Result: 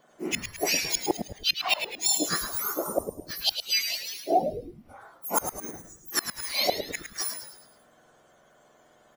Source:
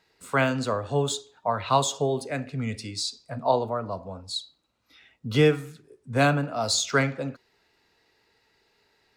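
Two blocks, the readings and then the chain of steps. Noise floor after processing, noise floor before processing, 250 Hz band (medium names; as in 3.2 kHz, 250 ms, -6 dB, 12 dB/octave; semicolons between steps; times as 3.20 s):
-60 dBFS, -69 dBFS, -7.0 dB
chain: spectrum inverted on a logarithmic axis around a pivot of 1.7 kHz; inverted gate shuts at -18 dBFS, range -29 dB; frequency-shifting echo 107 ms, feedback 45%, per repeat -130 Hz, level -8 dB; trim +7 dB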